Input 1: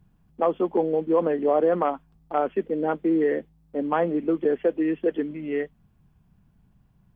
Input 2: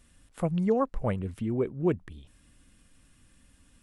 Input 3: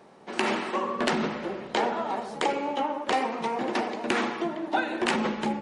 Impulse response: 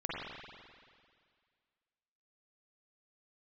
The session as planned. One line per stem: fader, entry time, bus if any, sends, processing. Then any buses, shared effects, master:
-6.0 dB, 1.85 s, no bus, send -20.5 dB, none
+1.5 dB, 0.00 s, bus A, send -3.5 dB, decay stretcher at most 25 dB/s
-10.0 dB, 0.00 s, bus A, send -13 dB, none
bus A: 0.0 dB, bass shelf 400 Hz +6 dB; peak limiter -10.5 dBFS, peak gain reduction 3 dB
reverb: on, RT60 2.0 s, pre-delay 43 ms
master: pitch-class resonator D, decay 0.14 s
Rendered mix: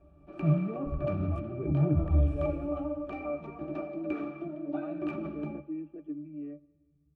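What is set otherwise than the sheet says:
stem 1: entry 1.85 s -> 0.90 s; stem 3 -10.0 dB -> -0.5 dB; reverb return -7.0 dB

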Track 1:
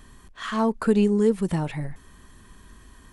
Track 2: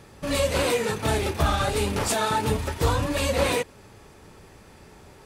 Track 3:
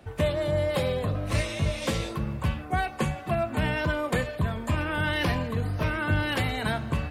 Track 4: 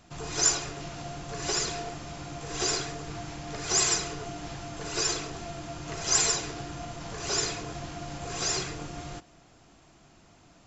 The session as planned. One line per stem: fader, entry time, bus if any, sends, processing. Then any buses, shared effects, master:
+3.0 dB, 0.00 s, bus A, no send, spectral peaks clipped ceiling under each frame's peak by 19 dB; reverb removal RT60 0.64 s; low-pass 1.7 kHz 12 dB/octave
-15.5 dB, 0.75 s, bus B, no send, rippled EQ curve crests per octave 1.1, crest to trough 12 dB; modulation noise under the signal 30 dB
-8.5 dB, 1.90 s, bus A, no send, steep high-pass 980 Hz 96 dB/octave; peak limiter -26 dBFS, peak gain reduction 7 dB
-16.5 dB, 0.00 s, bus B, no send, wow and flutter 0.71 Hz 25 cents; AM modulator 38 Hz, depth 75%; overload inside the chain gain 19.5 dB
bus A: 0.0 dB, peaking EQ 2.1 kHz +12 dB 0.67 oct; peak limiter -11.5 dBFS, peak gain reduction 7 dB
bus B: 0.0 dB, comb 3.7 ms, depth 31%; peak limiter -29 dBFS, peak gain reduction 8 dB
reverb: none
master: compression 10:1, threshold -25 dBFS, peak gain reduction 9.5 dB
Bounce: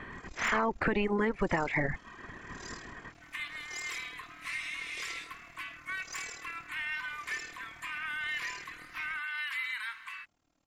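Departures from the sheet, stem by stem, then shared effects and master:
stem 2: muted; stem 3: entry 1.90 s -> 3.15 s

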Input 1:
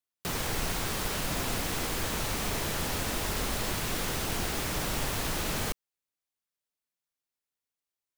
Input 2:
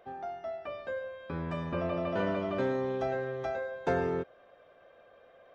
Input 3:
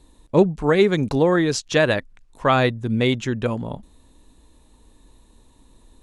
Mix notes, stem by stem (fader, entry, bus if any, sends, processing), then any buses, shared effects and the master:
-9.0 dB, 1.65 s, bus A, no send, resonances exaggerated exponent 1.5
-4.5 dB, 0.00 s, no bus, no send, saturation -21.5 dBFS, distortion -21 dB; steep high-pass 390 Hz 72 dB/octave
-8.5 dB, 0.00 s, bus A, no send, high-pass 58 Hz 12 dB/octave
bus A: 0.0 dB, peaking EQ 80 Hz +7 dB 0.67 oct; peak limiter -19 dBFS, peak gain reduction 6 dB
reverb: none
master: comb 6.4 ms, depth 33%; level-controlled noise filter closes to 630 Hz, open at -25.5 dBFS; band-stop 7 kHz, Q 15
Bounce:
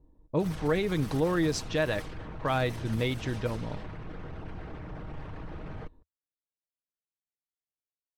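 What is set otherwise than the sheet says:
stem 1: entry 1.65 s -> 0.15 s; stem 2: muted; stem 3: missing high-pass 58 Hz 12 dB/octave

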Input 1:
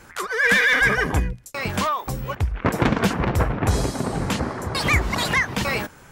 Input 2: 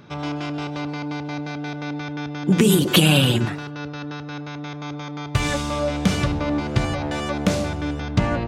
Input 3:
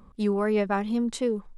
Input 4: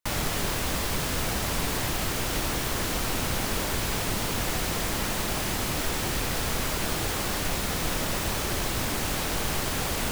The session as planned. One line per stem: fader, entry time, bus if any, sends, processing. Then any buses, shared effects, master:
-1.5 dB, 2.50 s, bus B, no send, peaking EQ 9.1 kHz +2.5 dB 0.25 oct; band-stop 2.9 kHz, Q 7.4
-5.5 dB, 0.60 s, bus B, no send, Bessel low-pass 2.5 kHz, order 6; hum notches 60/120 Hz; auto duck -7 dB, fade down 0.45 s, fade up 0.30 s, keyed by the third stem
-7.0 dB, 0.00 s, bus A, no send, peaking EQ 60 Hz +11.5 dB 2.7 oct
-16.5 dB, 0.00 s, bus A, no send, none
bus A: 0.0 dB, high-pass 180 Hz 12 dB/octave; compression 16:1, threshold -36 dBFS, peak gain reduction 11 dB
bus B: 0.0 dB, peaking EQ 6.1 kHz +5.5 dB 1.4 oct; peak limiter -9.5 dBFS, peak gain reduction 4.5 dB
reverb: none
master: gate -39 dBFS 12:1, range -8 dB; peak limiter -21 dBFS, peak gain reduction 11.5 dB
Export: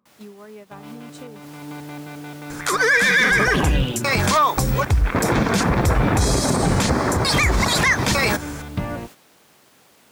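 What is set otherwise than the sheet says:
stem 1 -1.5 dB -> +10.0 dB; stem 3: missing peaking EQ 60 Hz +11.5 dB 2.7 oct; master: missing peak limiter -21 dBFS, peak gain reduction 11.5 dB

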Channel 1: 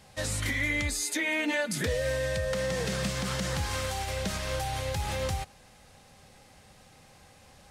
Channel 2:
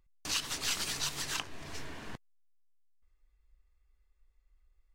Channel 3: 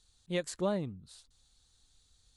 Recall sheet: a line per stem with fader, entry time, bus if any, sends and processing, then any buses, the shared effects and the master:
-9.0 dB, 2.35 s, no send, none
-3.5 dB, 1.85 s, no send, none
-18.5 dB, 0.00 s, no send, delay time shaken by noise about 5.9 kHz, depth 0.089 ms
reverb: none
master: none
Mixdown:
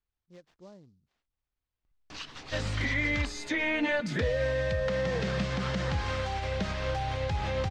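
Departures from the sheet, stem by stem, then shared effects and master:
stem 1 -9.0 dB -> +1.5 dB; master: extra distance through air 180 m

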